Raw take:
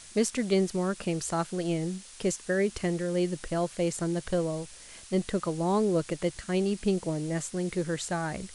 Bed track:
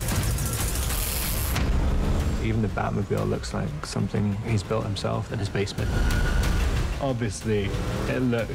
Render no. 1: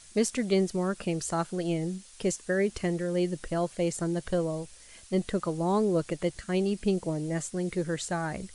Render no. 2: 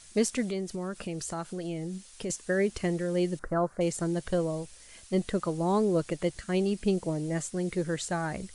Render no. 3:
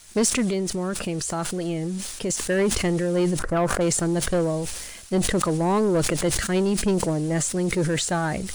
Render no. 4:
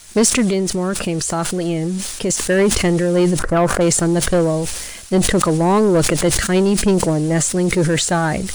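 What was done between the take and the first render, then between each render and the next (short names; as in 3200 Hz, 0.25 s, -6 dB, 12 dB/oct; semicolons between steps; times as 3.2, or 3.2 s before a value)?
denoiser 6 dB, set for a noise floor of -49 dBFS
0.5–2.3 compressor 2.5:1, threshold -33 dBFS; 3.39–3.81 resonant high shelf 2000 Hz -13 dB, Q 3
sample leveller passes 2; sustainer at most 40 dB/s
gain +7 dB; limiter -2 dBFS, peak gain reduction 3 dB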